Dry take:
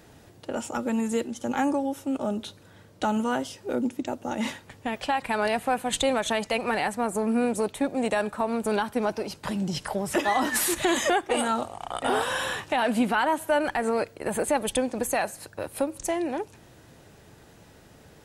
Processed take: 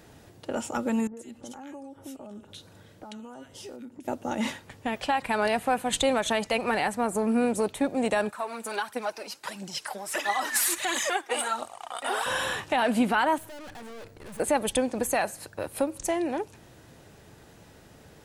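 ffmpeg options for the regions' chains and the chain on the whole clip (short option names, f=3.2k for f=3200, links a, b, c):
-filter_complex "[0:a]asettb=1/sr,asplit=3[a][b][c];[a]atrim=end=1.074[d];[b]atrim=start=1.07:end=4.08,asetpts=PTS-STARTPTS,afade=t=in:d=0.004:c=qsin,afade=t=out:st=3.006:d=0.004:c=qsin,acompressor=threshold=-38dB:ratio=16:attack=3.2:release=140:knee=1:detection=peak,acrossover=split=1500[e][f];[f]adelay=100[g];[e][g]amix=inputs=2:normalize=0,atrim=end_sample=132741[h];[c]atrim=start=4.076[i];[d][h]acrossfade=d=0.004:c1=hsin:c2=qsin[j];[j][i]acrossfade=d=0.004:c1=qsin:c2=hsin,asettb=1/sr,asplit=3[k][l][m];[k]atrim=end=8.304[n];[l]atrim=start=8.3:end=12.26,asetpts=PTS-STARTPTS,afade=t=in:d=0.004:c=qsin,afade=t=out:st=3.956:d=0.004:c=qsin,highpass=f=1.3k:p=1,equalizer=f=3.2k:w=4.4:g=-3,aphaser=in_gain=1:out_gain=1:delay=4.5:decay=0.49:speed=1.5:type=triangular[o];[m]atrim=start=12.256[p];[n][o]acrossfade=d=0.004:c1=hsin:c2=qsin[q];[q][p]acrossfade=d=0.004:c1=qsin:c2=hsin,asettb=1/sr,asplit=3[r][s][t];[r]atrim=end=13.384[u];[s]atrim=start=13.38:end=14.4,asetpts=PTS-STARTPTS,afade=t=in:d=0.004:c=qsin,afade=t=out:st=1.016:d=0.004:c=qsin,lowshelf=f=190:g=9.5,aeval=exprs='(tanh(126*val(0)+0.6)-tanh(0.6))/126':c=same[v];[t]atrim=start=14.396[w];[u][v]acrossfade=d=0.004:c1=hsin:c2=qsin[x];[x][w]acrossfade=d=0.004:c1=qsin:c2=hsin"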